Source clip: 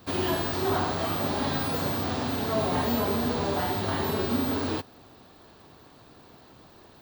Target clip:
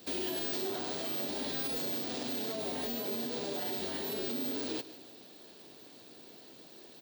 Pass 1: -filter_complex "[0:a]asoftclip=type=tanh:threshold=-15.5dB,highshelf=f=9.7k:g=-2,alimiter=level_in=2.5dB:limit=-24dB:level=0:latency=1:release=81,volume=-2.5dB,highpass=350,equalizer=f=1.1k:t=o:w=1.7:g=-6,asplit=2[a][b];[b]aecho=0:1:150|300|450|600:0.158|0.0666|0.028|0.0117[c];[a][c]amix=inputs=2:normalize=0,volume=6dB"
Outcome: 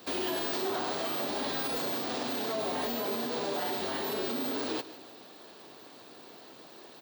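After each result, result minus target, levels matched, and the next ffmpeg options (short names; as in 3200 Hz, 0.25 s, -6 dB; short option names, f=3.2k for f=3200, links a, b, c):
soft clip: distortion +11 dB; 1000 Hz band +6.5 dB
-filter_complex "[0:a]asoftclip=type=tanh:threshold=-9.5dB,highshelf=f=9.7k:g=-2,alimiter=level_in=2.5dB:limit=-24dB:level=0:latency=1:release=81,volume=-2.5dB,highpass=350,equalizer=f=1.1k:t=o:w=1.7:g=-6,asplit=2[a][b];[b]aecho=0:1:150|300|450|600:0.158|0.0666|0.028|0.0117[c];[a][c]amix=inputs=2:normalize=0,volume=6dB"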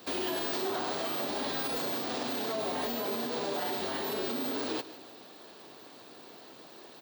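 1000 Hz band +6.5 dB
-filter_complex "[0:a]asoftclip=type=tanh:threshold=-9.5dB,highshelf=f=9.7k:g=-2,alimiter=level_in=2.5dB:limit=-24dB:level=0:latency=1:release=81,volume=-2.5dB,highpass=350,equalizer=f=1.1k:t=o:w=1.7:g=-17,asplit=2[a][b];[b]aecho=0:1:150|300|450|600:0.158|0.0666|0.028|0.0117[c];[a][c]amix=inputs=2:normalize=0,volume=6dB"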